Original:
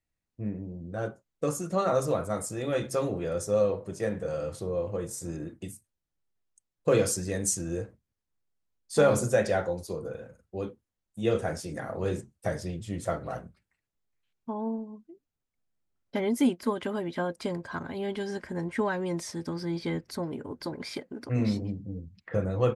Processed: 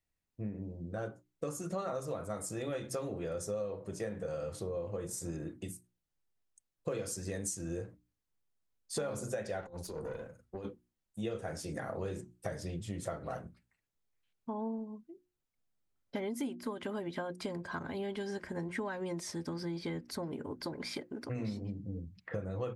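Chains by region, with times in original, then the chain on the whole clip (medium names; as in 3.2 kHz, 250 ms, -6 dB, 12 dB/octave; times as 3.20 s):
9.61–10.65 s: compressor with a negative ratio -35 dBFS, ratio -0.5 + valve stage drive 32 dB, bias 0.45
whole clip: hum notches 60/120/180/240/300/360 Hz; compression 6:1, threshold -33 dBFS; trim -1.5 dB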